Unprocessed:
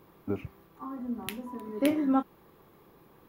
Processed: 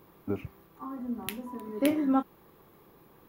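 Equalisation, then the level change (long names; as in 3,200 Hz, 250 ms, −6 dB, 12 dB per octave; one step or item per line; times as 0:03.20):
high-shelf EQ 11,000 Hz +5 dB
0.0 dB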